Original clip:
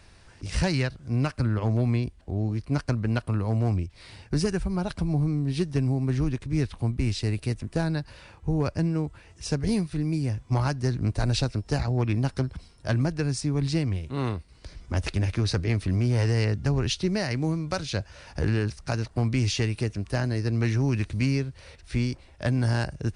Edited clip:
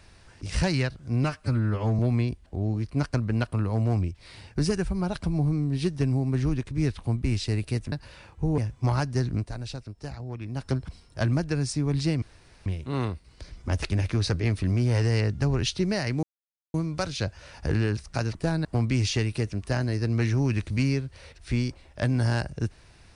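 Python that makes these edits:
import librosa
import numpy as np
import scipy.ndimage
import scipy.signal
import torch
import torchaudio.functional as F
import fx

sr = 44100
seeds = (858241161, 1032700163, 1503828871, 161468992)

y = fx.edit(x, sr, fx.stretch_span(start_s=1.24, length_s=0.5, factor=1.5),
    fx.move(start_s=7.67, length_s=0.3, to_s=19.08),
    fx.cut(start_s=8.63, length_s=1.63),
    fx.fade_down_up(start_s=11.02, length_s=1.35, db=-11.0, fade_s=0.25, curve='qua'),
    fx.insert_room_tone(at_s=13.9, length_s=0.44),
    fx.insert_silence(at_s=17.47, length_s=0.51), tone=tone)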